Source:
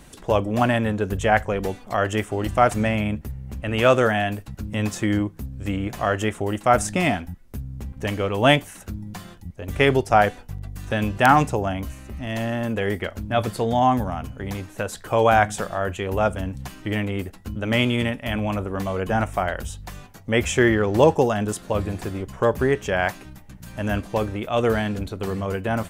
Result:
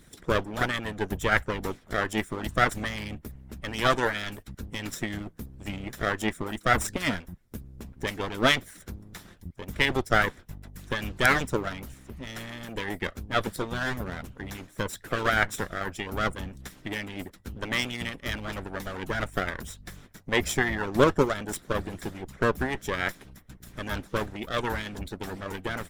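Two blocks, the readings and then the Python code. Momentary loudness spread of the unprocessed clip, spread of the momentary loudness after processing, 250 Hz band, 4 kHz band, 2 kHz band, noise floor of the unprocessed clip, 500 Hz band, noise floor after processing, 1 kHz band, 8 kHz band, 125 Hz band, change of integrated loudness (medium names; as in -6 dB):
16 LU, 18 LU, -8.5 dB, -1.5 dB, -2.0 dB, -45 dBFS, -8.5 dB, -55 dBFS, -8.0 dB, -3.5 dB, -9.0 dB, -6.5 dB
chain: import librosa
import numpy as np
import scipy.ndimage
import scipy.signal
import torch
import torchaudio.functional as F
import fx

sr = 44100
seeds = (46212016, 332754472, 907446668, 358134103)

y = fx.lower_of_two(x, sr, delay_ms=0.54)
y = fx.hpss(y, sr, part='harmonic', gain_db=-16)
y = y * librosa.db_to_amplitude(-1.0)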